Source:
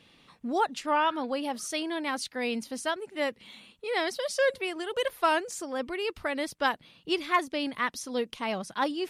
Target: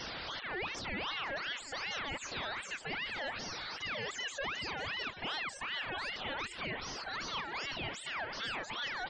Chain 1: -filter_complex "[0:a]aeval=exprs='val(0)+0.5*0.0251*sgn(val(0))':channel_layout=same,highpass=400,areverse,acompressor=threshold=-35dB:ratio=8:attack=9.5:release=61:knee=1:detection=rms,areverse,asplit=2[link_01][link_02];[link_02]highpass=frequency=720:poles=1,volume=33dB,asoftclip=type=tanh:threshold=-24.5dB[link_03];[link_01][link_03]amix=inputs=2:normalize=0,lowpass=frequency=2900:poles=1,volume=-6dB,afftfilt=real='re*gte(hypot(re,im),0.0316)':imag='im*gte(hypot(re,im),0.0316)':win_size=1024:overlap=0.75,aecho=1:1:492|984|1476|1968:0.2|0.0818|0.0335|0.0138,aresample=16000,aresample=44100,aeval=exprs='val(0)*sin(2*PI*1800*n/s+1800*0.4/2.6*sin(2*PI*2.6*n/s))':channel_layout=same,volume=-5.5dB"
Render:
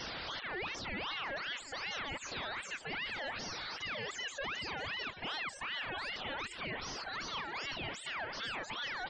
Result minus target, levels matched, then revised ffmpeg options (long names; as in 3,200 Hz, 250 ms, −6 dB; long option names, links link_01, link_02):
downward compressor: peak gain reduction +5.5 dB
-filter_complex "[0:a]aeval=exprs='val(0)+0.5*0.0251*sgn(val(0))':channel_layout=same,highpass=400,areverse,acompressor=threshold=-28.5dB:ratio=8:attack=9.5:release=61:knee=1:detection=rms,areverse,asplit=2[link_01][link_02];[link_02]highpass=frequency=720:poles=1,volume=33dB,asoftclip=type=tanh:threshold=-24.5dB[link_03];[link_01][link_03]amix=inputs=2:normalize=0,lowpass=frequency=2900:poles=1,volume=-6dB,afftfilt=real='re*gte(hypot(re,im),0.0316)':imag='im*gte(hypot(re,im),0.0316)':win_size=1024:overlap=0.75,aecho=1:1:492|984|1476|1968:0.2|0.0818|0.0335|0.0138,aresample=16000,aresample=44100,aeval=exprs='val(0)*sin(2*PI*1800*n/s+1800*0.4/2.6*sin(2*PI*2.6*n/s))':channel_layout=same,volume=-5.5dB"